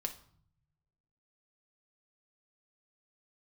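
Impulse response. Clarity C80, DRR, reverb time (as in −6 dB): 17.5 dB, 3.5 dB, 0.55 s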